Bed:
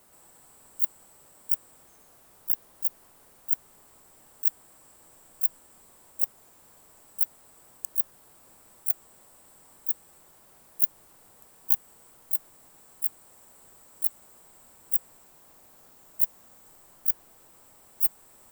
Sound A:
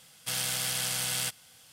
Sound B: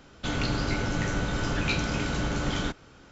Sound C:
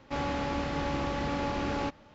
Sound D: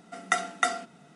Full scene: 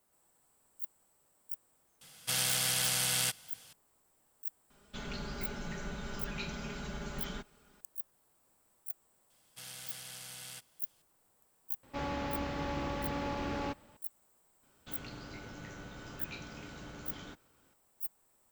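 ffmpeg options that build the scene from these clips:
-filter_complex "[1:a]asplit=2[a][b];[2:a]asplit=2[c][d];[0:a]volume=-15.5dB[e];[c]aecho=1:1:4.9:0.95[f];[d]lowshelf=f=85:g=-7.5[g];[a]atrim=end=1.72,asetpts=PTS-STARTPTS,afade=t=in:d=0.004:c=hsin,afade=t=out:st=1.716:d=0.004:c=hsin,adelay=2010[h];[f]atrim=end=3.11,asetpts=PTS-STARTPTS,volume=-15dB,afade=t=in:d=0.004:c=hsin,afade=t=out:st=3.106:d=0.004:c=hsin,adelay=4700[i];[b]atrim=end=1.72,asetpts=PTS-STARTPTS,volume=-16dB,afade=t=in:d=0.004:c=hsin,afade=t=out:st=1.716:d=0.004:c=hsin,adelay=410130S[j];[3:a]atrim=end=2.14,asetpts=PTS-STARTPTS,volume=-5dB,afade=t=in:d=0.004:c=hsin,afade=t=out:st=2.136:d=0.004:c=hsin,adelay=11830[k];[g]atrim=end=3.11,asetpts=PTS-STARTPTS,volume=-17.5dB,afade=t=in:d=0.004:c=hsin,afade=t=out:st=3.106:d=0.004:c=hsin,adelay=14630[l];[e][h][i][j][k][l]amix=inputs=6:normalize=0"

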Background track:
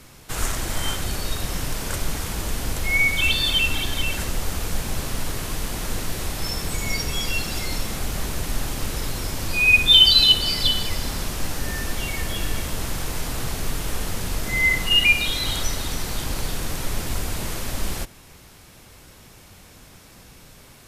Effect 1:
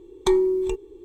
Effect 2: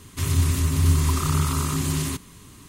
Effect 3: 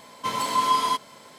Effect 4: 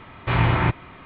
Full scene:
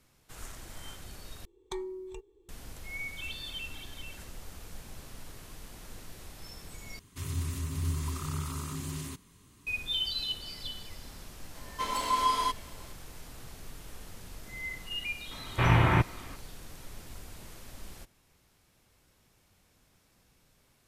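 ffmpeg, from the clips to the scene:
-filter_complex "[0:a]volume=-19.5dB[a];[1:a]equalizer=f=280:w=1.1:g=-8[b];[3:a]highpass=220[c];[a]asplit=3[d][e][f];[d]atrim=end=1.454[g];[b]atrim=end=1.04,asetpts=PTS-STARTPTS,volume=-13.5dB[h];[e]atrim=start=2.486:end=6.994[i];[2:a]atrim=end=2.68,asetpts=PTS-STARTPTS,volume=-13dB[j];[f]atrim=start=9.666[k];[c]atrim=end=1.38,asetpts=PTS-STARTPTS,volume=-5.5dB,afade=t=in:d=0.004:c=hsin,afade=t=out:st=1.376:d=0.004:c=hsin,adelay=11550[l];[4:a]atrim=end=1.05,asetpts=PTS-STARTPTS,volume=-3.5dB,afade=t=in:d=0.004:c=hsin,afade=t=out:st=1.046:d=0.004:c=hsin,adelay=15310[m];[g][h]acrossfade=d=0.004:c1=hsin:c2=hsin[n];[n][i]acrossfade=d=0.004:c1=hsin:c2=hsin[o];[o][j]acrossfade=d=0.004:c1=hsin:c2=hsin[p];[p][k]acrossfade=d=0.004:c1=hsin:c2=hsin[q];[q][l][m]amix=inputs=3:normalize=0"

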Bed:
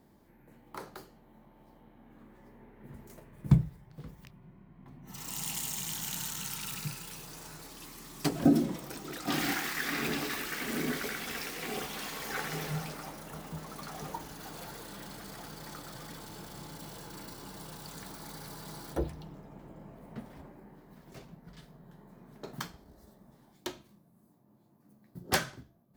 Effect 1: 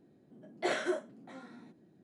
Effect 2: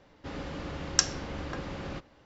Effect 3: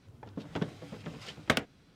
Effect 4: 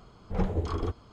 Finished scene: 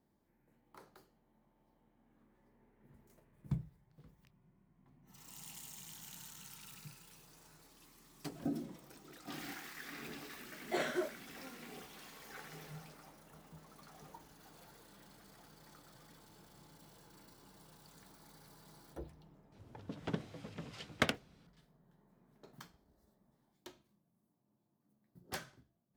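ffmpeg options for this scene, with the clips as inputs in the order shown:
-filter_complex "[0:a]volume=-15dB[a];[1:a]atrim=end=2.03,asetpts=PTS-STARTPTS,volume=-4dB,afade=t=in:d=0.004:c=hsin,afade=t=out:st=2.026:d=0.004:c=hsin,adelay=10090[b];[3:a]atrim=end=1.95,asetpts=PTS-STARTPTS,volume=-4.5dB,afade=t=in:d=0.004:c=hsin,afade=t=out:st=1.946:d=0.004:c=hsin,adelay=19520[c];[a][b][c]amix=inputs=3:normalize=0"

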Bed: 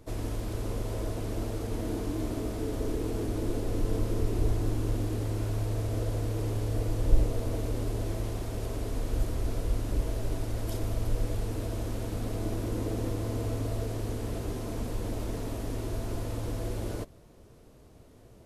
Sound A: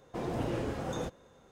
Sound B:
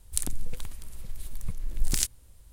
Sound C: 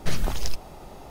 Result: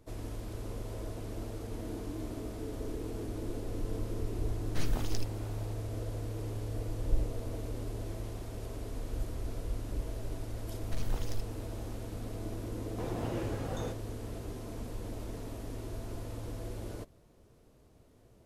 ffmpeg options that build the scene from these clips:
-filter_complex "[3:a]asplit=2[a][b];[0:a]volume=-7dB[c];[b]volume=15.5dB,asoftclip=hard,volume=-15.5dB[d];[a]atrim=end=1.1,asetpts=PTS-STARTPTS,volume=-8.5dB,afade=t=in:d=0.1,afade=t=out:st=1:d=0.1,adelay=206829S[e];[d]atrim=end=1.1,asetpts=PTS-STARTPTS,volume=-12dB,afade=t=in:d=0.004:c=hsin,afade=t=out:st=1.096:d=0.004:c=hsin,adelay=10860[f];[1:a]atrim=end=1.51,asetpts=PTS-STARTPTS,volume=-3.5dB,afade=t=in:d=0.004:c=hsin,afade=t=out:st=1.506:d=0.004:c=hsin,adelay=566244S[g];[c][e][f][g]amix=inputs=4:normalize=0"

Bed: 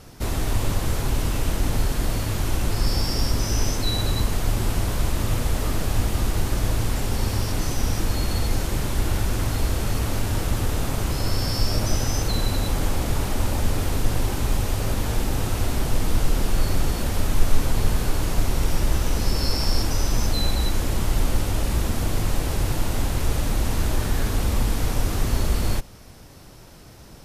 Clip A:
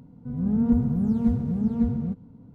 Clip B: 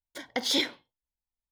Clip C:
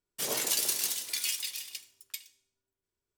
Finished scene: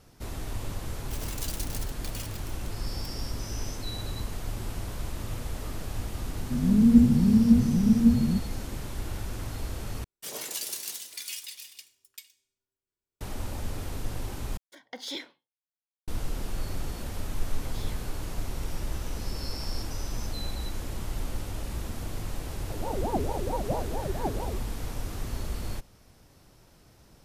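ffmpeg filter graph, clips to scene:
-filter_complex "[3:a]asplit=2[a][b];[1:a]asplit=2[c][d];[2:a]asplit=2[e][f];[0:a]volume=-11.5dB[g];[a]aeval=exprs='val(0)*gte(abs(val(0)),0.0376)':c=same[h];[c]lowpass=f=310:t=q:w=2.3[i];[e]highpass=160[j];[f]asoftclip=type=tanh:threshold=-28dB[k];[d]aeval=exprs='val(0)*sin(2*PI*450*n/s+450*0.65/4.5*sin(2*PI*4.5*n/s))':c=same[l];[g]asplit=3[m][n][o];[m]atrim=end=10.044[p];[b]atrim=end=3.17,asetpts=PTS-STARTPTS,volume=-5.5dB[q];[n]atrim=start=13.206:end=14.574[r];[j]atrim=end=1.51,asetpts=PTS-STARTPTS,volume=-10.5dB[s];[o]atrim=start=16.076[t];[h]atrim=end=3.17,asetpts=PTS-STARTPTS,volume=-8dB,afade=t=in:d=0.004:c=hsin,afade=t=out:st=3.166:d=0.004:c=hsin,adelay=910[u];[i]atrim=end=2.54,asetpts=PTS-STARTPTS,volume=-1dB,afade=t=in:d=0.004:c=hsin,afade=t=out:st=2.536:d=0.004:c=hsin,adelay=6250[v];[k]atrim=end=1.51,asetpts=PTS-STARTPTS,volume=-16.5dB,afade=t=in:d=0.004:c=hsin,afade=t=out:st=1.506:d=0.004:c=hsin,adelay=17290[w];[l]atrim=end=2.54,asetpts=PTS-STARTPTS,volume=-6dB,afade=t=in:d=0.004:c=hsin,afade=t=out:st=2.536:d=0.004:c=hsin,adelay=989604S[x];[p][q]acrossfade=d=0.004:c1=hsin:c2=hsin[y];[y][r]acrossfade=d=0.004:c1=hsin:c2=hsin[z];[z][s]acrossfade=d=0.004:c1=hsin:c2=hsin[aa];[aa][t]acrossfade=d=0.004:c1=hsin:c2=hsin[ab];[ab][u][v][w][x]amix=inputs=5:normalize=0"

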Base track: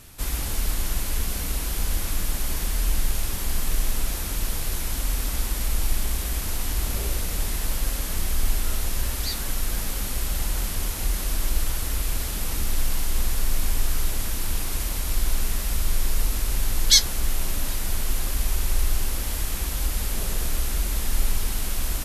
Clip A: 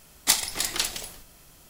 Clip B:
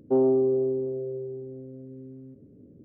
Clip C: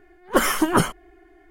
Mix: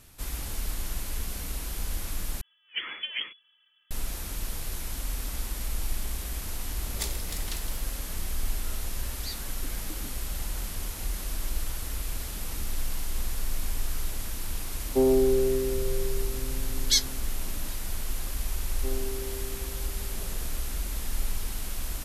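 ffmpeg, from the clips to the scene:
-filter_complex "[3:a]asplit=2[a][b];[2:a]asplit=2[c][d];[0:a]volume=-7dB[e];[a]lowpass=f=2.9k:t=q:w=0.5098,lowpass=f=2.9k:t=q:w=0.6013,lowpass=f=2.9k:t=q:w=0.9,lowpass=f=2.9k:t=q:w=2.563,afreqshift=-3400[f];[b]asplit=3[g][h][i];[g]bandpass=f=270:t=q:w=8,volume=0dB[j];[h]bandpass=f=2.29k:t=q:w=8,volume=-6dB[k];[i]bandpass=f=3.01k:t=q:w=8,volume=-9dB[l];[j][k][l]amix=inputs=3:normalize=0[m];[e]asplit=2[n][o];[n]atrim=end=2.414[p];[f]atrim=end=1.5,asetpts=PTS-STARTPTS,volume=-15dB[q];[o]atrim=start=3.906[r];[1:a]atrim=end=1.69,asetpts=PTS-STARTPTS,volume=-13.5dB,afade=t=in:d=0.004:c=hsin,afade=t=out:st=1.686:d=0.004:c=hsin,adelay=6720[s];[m]atrim=end=1.5,asetpts=PTS-STARTPTS,volume=-16.5dB,afade=t=in:d=0.004:c=hsin,afade=t=out:st=1.496:d=0.004:c=hsin,adelay=9280[t];[c]atrim=end=2.84,asetpts=PTS-STARTPTS,volume=-0.5dB,afade=t=in:d=0.004:c=hsin,afade=t=out:st=2.836:d=0.004:c=hsin,adelay=14850[u];[d]atrim=end=2.84,asetpts=PTS-STARTPTS,volume=-16dB,afade=t=in:d=0.004:c=hsin,afade=t=out:st=2.836:d=0.004:c=hsin,adelay=18730[v];[p][q]acrossfade=d=0.004:c1=hsin:c2=hsin[w];[w][r]acrossfade=d=0.004:c1=hsin:c2=hsin[x];[x][s][t][u][v]amix=inputs=5:normalize=0"

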